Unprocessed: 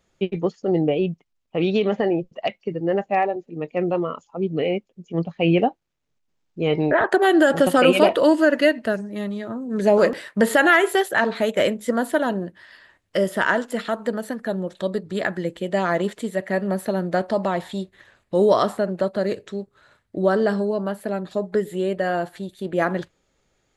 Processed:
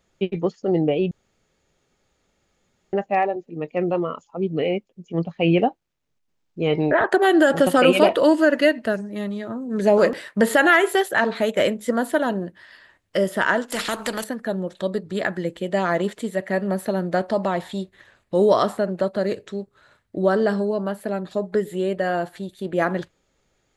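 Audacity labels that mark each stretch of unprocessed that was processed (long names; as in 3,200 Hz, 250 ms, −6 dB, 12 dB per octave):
1.110000	2.930000	fill with room tone
13.720000	14.240000	every bin compressed towards the loudest bin 2 to 1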